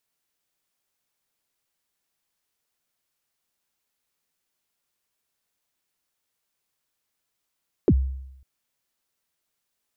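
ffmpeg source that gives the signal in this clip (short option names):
-f lavfi -i "aevalsrc='0.266*pow(10,-3*t/0.84)*sin(2*PI*(470*0.055/log(66/470)*(exp(log(66/470)*min(t,0.055)/0.055)-1)+66*max(t-0.055,0)))':d=0.55:s=44100"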